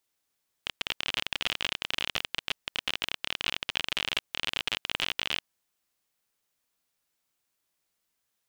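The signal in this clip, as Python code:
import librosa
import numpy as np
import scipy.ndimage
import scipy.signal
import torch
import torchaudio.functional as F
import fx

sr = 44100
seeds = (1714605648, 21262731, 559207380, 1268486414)

y = fx.geiger_clicks(sr, seeds[0], length_s=4.75, per_s=38.0, level_db=-11.5)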